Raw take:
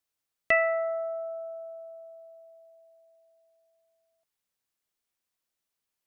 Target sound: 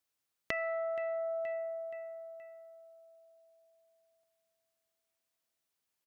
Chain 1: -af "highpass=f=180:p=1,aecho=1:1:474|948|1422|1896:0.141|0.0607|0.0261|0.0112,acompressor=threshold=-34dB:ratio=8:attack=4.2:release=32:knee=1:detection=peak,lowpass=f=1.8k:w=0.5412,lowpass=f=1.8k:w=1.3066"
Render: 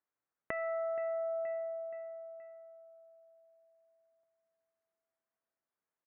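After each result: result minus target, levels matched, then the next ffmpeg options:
2000 Hz band -4.5 dB; 125 Hz band -2.5 dB
-af "highpass=f=180:p=1,aecho=1:1:474|948|1422|1896:0.141|0.0607|0.0261|0.0112,acompressor=threshold=-34dB:ratio=8:attack=4.2:release=32:knee=1:detection=peak"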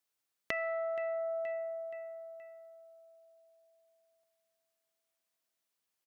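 125 Hz band -3.0 dB
-af "highpass=f=50:p=1,aecho=1:1:474|948|1422|1896:0.141|0.0607|0.0261|0.0112,acompressor=threshold=-34dB:ratio=8:attack=4.2:release=32:knee=1:detection=peak"

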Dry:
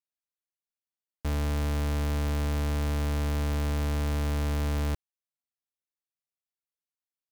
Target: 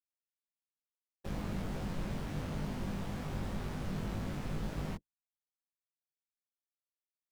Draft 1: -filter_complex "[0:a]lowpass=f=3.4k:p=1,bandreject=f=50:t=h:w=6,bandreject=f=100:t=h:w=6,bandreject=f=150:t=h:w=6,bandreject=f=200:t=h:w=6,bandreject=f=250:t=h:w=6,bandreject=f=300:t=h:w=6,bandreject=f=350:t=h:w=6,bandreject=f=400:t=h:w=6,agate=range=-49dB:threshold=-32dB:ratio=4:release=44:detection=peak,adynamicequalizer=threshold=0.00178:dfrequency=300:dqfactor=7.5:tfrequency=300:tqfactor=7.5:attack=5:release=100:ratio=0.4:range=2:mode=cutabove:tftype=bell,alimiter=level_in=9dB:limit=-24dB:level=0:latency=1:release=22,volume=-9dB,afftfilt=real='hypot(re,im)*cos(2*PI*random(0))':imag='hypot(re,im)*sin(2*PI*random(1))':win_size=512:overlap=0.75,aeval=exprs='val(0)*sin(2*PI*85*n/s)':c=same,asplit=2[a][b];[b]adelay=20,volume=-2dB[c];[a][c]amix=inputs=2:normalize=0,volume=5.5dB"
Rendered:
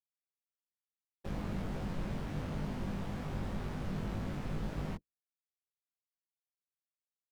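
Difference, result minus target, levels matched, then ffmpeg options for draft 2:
8000 Hz band -4.5 dB
-filter_complex "[0:a]lowpass=f=7.4k:p=1,bandreject=f=50:t=h:w=6,bandreject=f=100:t=h:w=6,bandreject=f=150:t=h:w=6,bandreject=f=200:t=h:w=6,bandreject=f=250:t=h:w=6,bandreject=f=300:t=h:w=6,bandreject=f=350:t=h:w=6,bandreject=f=400:t=h:w=6,agate=range=-49dB:threshold=-32dB:ratio=4:release=44:detection=peak,adynamicequalizer=threshold=0.00178:dfrequency=300:dqfactor=7.5:tfrequency=300:tqfactor=7.5:attack=5:release=100:ratio=0.4:range=2:mode=cutabove:tftype=bell,alimiter=level_in=9dB:limit=-24dB:level=0:latency=1:release=22,volume=-9dB,afftfilt=real='hypot(re,im)*cos(2*PI*random(0))':imag='hypot(re,im)*sin(2*PI*random(1))':win_size=512:overlap=0.75,aeval=exprs='val(0)*sin(2*PI*85*n/s)':c=same,asplit=2[a][b];[b]adelay=20,volume=-2dB[c];[a][c]amix=inputs=2:normalize=0,volume=5.5dB"

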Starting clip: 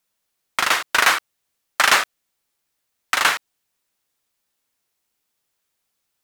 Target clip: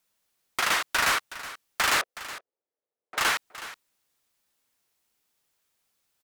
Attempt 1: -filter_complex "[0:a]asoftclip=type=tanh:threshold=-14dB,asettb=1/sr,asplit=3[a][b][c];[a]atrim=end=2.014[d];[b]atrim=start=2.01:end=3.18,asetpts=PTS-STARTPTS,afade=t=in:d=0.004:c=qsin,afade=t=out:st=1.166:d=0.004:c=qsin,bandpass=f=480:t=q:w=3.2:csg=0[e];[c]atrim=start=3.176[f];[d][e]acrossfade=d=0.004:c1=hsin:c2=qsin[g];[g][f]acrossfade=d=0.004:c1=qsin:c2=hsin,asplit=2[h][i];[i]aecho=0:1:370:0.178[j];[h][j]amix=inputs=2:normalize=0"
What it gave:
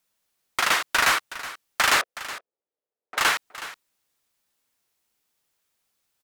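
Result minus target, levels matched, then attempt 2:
soft clip: distortion -4 dB
-filter_complex "[0:a]asoftclip=type=tanh:threshold=-20dB,asettb=1/sr,asplit=3[a][b][c];[a]atrim=end=2.014[d];[b]atrim=start=2.01:end=3.18,asetpts=PTS-STARTPTS,afade=t=in:d=0.004:c=qsin,afade=t=out:st=1.166:d=0.004:c=qsin,bandpass=f=480:t=q:w=3.2:csg=0[e];[c]atrim=start=3.176[f];[d][e]acrossfade=d=0.004:c1=hsin:c2=qsin[g];[g][f]acrossfade=d=0.004:c1=qsin:c2=hsin,asplit=2[h][i];[i]aecho=0:1:370:0.178[j];[h][j]amix=inputs=2:normalize=0"

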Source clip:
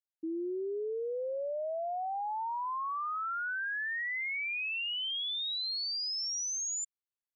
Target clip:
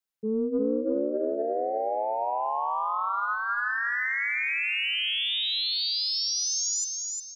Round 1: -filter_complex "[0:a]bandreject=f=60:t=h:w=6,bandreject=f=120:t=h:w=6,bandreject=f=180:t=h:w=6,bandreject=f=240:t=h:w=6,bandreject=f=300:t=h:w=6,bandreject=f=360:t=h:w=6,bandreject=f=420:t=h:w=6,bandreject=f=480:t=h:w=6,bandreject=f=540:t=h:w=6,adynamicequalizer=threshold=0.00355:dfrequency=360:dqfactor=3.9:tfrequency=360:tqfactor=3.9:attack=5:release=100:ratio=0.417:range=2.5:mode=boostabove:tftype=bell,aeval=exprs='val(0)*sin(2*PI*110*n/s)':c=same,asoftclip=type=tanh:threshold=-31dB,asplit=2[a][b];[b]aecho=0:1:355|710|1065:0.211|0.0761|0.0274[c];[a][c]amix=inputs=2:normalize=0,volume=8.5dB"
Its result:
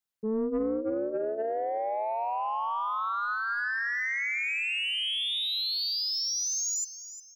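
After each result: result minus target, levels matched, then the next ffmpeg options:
soft clip: distortion +13 dB; echo-to-direct -9.5 dB
-filter_complex "[0:a]bandreject=f=60:t=h:w=6,bandreject=f=120:t=h:w=6,bandreject=f=180:t=h:w=6,bandreject=f=240:t=h:w=6,bandreject=f=300:t=h:w=6,bandreject=f=360:t=h:w=6,bandreject=f=420:t=h:w=6,bandreject=f=480:t=h:w=6,bandreject=f=540:t=h:w=6,adynamicequalizer=threshold=0.00355:dfrequency=360:dqfactor=3.9:tfrequency=360:tqfactor=3.9:attack=5:release=100:ratio=0.417:range=2.5:mode=boostabove:tftype=bell,aeval=exprs='val(0)*sin(2*PI*110*n/s)':c=same,asoftclip=type=tanh:threshold=-23dB,asplit=2[a][b];[b]aecho=0:1:355|710|1065:0.211|0.0761|0.0274[c];[a][c]amix=inputs=2:normalize=0,volume=8.5dB"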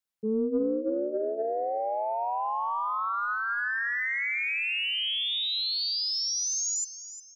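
echo-to-direct -9.5 dB
-filter_complex "[0:a]bandreject=f=60:t=h:w=6,bandreject=f=120:t=h:w=6,bandreject=f=180:t=h:w=6,bandreject=f=240:t=h:w=6,bandreject=f=300:t=h:w=6,bandreject=f=360:t=h:w=6,bandreject=f=420:t=h:w=6,bandreject=f=480:t=h:w=6,bandreject=f=540:t=h:w=6,adynamicequalizer=threshold=0.00355:dfrequency=360:dqfactor=3.9:tfrequency=360:tqfactor=3.9:attack=5:release=100:ratio=0.417:range=2.5:mode=boostabove:tftype=bell,aeval=exprs='val(0)*sin(2*PI*110*n/s)':c=same,asoftclip=type=tanh:threshold=-23dB,asplit=2[a][b];[b]aecho=0:1:355|710|1065|1420|1775:0.631|0.227|0.0818|0.0294|0.0106[c];[a][c]amix=inputs=2:normalize=0,volume=8.5dB"

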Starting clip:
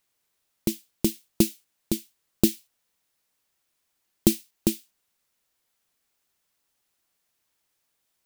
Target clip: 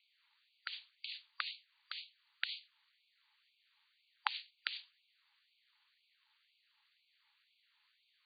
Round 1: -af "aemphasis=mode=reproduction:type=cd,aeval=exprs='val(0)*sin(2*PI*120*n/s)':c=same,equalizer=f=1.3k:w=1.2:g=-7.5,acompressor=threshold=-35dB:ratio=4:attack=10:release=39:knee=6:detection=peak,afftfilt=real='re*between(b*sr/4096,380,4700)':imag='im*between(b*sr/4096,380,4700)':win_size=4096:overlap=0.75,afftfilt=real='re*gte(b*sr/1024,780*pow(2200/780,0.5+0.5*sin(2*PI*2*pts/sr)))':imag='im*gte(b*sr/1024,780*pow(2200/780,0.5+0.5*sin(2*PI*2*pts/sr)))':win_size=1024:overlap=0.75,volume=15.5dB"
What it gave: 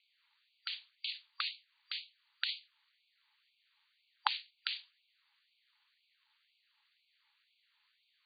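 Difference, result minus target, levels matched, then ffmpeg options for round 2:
compressor: peak gain reduction -8.5 dB
-af "aemphasis=mode=reproduction:type=cd,aeval=exprs='val(0)*sin(2*PI*120*n/s)':c=same,equalizer=f=1.3k:w=1.2:g=-7.5,acompressor=threshold=-46dB:ratio=4:attack=10:release=39:knee=6:detection=peak,afftfilt=real='re*between(b*sr/4096,380,4700)':imag='im*between(b*sr/4096,380,4700)':win_size=4096:overlap=0.75,afftfilt=real='re*gte(b*sr/1024,780*pow(2200/780,0.5+0.5*sin(2*PI*2*pts/sr)))':imag='im*gte(b*sr/1024,780*pow(2200/780,0.5+0.5*sin(2*PI*2*pts/sr)))':win_size=1024:overlap=0.75,volume=15.5dB"

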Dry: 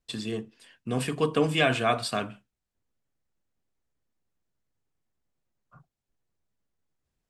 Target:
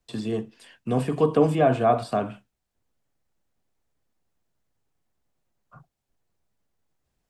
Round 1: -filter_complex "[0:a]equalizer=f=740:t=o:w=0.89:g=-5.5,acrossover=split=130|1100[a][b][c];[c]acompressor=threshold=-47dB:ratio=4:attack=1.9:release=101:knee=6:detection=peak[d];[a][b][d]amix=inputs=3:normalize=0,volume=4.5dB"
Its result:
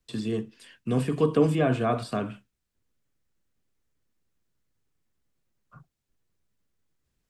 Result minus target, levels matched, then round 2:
1000 Hz band -4.0 dB
-filter_complex "[0:a]equalizer=f=740:t=o:w=0.89:g=3.5,acrossover=split=130|1100[a][b][c];[c]acompressor=threshold=-47dB:ratio=4:attack=1.9:release=101:knee=6:detection=peak[d];[a][b][d]amix=inputs=3:normalize=0,volume=4.5dB"

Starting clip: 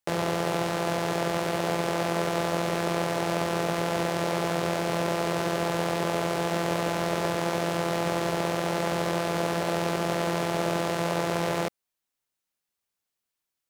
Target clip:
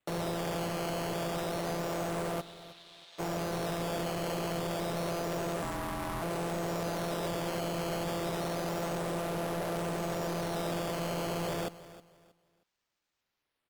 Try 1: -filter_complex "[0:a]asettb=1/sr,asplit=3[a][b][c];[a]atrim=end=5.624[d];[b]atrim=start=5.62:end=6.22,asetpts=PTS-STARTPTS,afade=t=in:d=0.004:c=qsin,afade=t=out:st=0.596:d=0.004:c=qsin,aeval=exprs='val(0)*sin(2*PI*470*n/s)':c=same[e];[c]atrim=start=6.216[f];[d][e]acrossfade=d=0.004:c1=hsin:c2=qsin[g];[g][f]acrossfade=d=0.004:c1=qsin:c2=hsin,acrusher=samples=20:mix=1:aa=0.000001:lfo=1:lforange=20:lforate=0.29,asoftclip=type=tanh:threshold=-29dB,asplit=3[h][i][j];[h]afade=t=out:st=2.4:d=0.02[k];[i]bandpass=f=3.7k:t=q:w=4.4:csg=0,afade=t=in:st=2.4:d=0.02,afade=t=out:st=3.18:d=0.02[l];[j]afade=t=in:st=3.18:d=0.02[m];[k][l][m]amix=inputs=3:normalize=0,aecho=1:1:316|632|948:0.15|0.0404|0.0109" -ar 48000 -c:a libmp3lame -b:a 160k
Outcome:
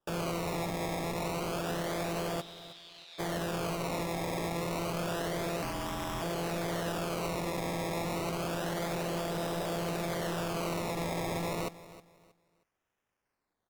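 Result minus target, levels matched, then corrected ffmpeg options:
decimation with a swept rate: distortion +8 dB
-filter_complex "[0:a]asettb=1/sr,asplit=3[a][b][c];[a]atrim=end=5.624[d];[b]atrim=start=5.62:end=6.22,asetpts=PTS-STARTPTS,afade=t=in:d=0.004:c=qsin,afade=t=out:st=0.596:d=0.004:c=qsin,aeval=exprs='val(0)*sin(2*PI*470*n/s)':c=same[e];[c]atrim=start=6.216[f];[d][e]acrossfade=d=0.004:c1=hsin:c2=qsin[g];[g][f]acrossfade=d=0.004:c1=qsin:c2=hsin,acrusher=samples=8:mix=1:aa=0.000001:lfo=1:lforange=8:lforate=0.29,asoftclip=type=tanh:threshold=-29dB,asplit=3[h][i][j];[h]afade=t=out:st=2.4:d=0.02[k];[i]bandpass=f=3.7k:t=q:w=4.4:csg=0,afade=t=in:st=2.4:d=0.02,afade=t=out:st=3.18:d=0.02[l];[j]afade=t=in:st=3.18:d=0.02[m];[k][l][m]amix=inputs=3:normalize=0,aecho=1:1:316|632|948:0.15|0.0404|0.0109" -ar 48000 -c:a libmp3lame -b:a 160k

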